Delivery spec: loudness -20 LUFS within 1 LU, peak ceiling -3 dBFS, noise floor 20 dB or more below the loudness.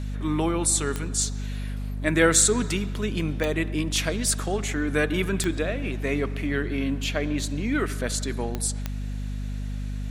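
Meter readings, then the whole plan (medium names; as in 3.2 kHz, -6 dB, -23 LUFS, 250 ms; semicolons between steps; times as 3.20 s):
clicks found 5; hum 50 Hz; highest harmonic 250 Hz; hum level -28 dBFS; loudness -25.5 LUFS; peak level -6.5 dBFS; loudness target -20.0 LUFS
-> de-click; hum notches 50/100/150/200/250 Hz; trim +5.5 dB; peak limiter -3 dBFS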